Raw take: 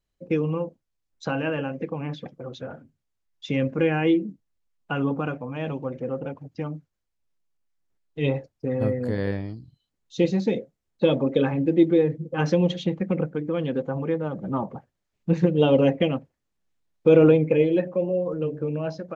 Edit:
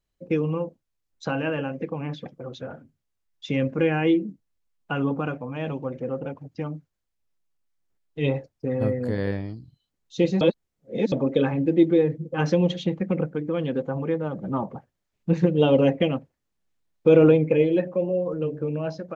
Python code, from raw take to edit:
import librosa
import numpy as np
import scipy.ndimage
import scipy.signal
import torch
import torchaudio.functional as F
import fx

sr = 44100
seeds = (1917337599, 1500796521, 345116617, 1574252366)

y = fx.edit(x, sr, fx.reverse_span(start_s=10.41, length_s=0.71), tone=tone)